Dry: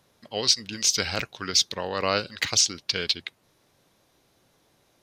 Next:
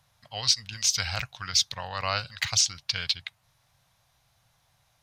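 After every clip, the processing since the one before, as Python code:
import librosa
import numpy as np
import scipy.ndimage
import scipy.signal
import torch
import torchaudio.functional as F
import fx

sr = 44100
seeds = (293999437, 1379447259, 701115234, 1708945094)

y = fx.curve_eq(x, sr, hz=(130.0, 220.0, 380.0, 720.0), db=(0, -18, -26, -5))
y = F.gain(torch.from_numpy(y), 3.0).numpy()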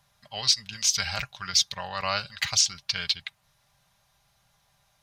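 y = x + 0.47 * np.pad(x, (int(5.0 * sr / 1000.0), 0))[:len(x)]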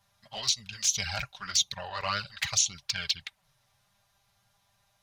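y = fx.env_flanger(x, sr, rest_ms=10.3, full_db=-21.0)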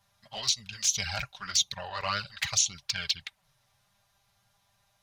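y = x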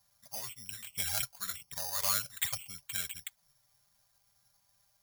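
y = (np.kron(scipy.signal.resample_poly(x, 1, 8), np.eye(8)[0]) * 8)[:len(x)]
y = F.gain(torch.from_numpy(y), -7.5).numpy()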